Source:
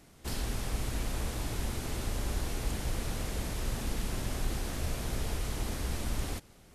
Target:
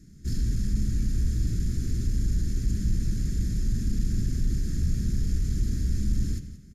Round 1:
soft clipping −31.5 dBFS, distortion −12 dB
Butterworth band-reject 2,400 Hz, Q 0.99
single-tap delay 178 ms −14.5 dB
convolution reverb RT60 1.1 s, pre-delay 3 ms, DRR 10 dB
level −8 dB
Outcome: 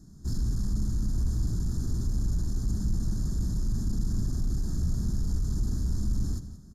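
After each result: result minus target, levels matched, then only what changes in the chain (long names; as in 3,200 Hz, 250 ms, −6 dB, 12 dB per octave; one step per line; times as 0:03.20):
1,000 Hz band +9.5 dB; soft clipping: distortion +7 dB
change: Butterworth band-reject 880 Hz, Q 0.99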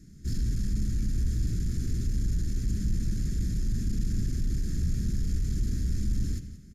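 soft clipping: distortion +7 dB
change: soft clipping −25.5 dBFS, distortion −19 dB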